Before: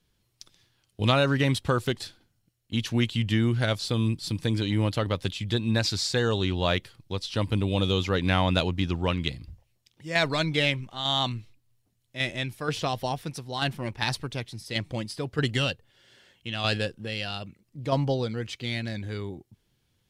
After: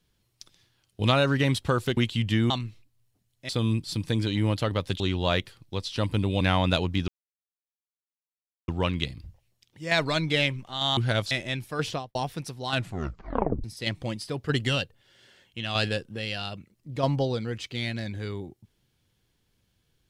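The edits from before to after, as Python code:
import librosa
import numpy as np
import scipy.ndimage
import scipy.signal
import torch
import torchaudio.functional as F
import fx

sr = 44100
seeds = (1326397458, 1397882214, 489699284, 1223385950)

y = fx.studio_fade_out(x, sr, start_s=12.76, length_s=0.28)
y = fx.edit(y, sr, fx.cut(start_s=1.97, length_s=1.0),
    fx.swap(start_s=3.5, length_s=0.34, other_s=11.21, other_length_s=0.99),
    fx.cut(start_s=5.35, length_s=1.03),
    fx.cut(start_s=7.79, length_s=0.46),
    fx.insert_silence(at_s=8.92, length_s=1.6),
    fx.tape_stop(start_s=13.59, length_s=0.94), tone=tone)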